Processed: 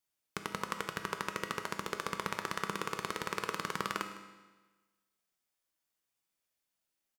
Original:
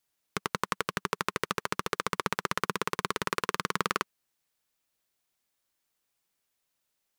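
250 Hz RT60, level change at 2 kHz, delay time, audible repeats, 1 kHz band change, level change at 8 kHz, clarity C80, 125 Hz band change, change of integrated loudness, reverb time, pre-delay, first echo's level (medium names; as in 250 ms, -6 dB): 1.3 s, -5.5 dB, 156 ms, 1, -5.5 dB, -5.5 dB, 9.0 dB, -6.0 dB, -5.5 dB, 1.3 s, 6 ms, -16.5 dB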